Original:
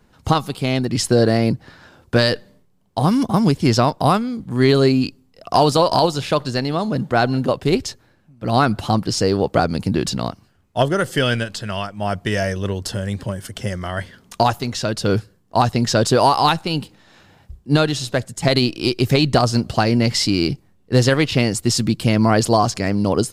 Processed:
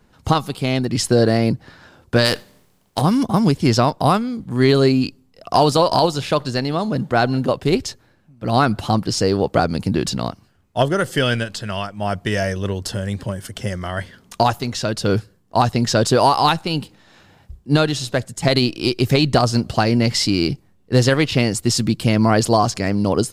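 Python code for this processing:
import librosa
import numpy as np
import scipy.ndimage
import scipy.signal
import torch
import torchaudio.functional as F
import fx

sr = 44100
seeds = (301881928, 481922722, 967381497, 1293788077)

y = fx.spec_flatten(x, sr, power=0.65, at=(2.24, 3.0), fade=0.02)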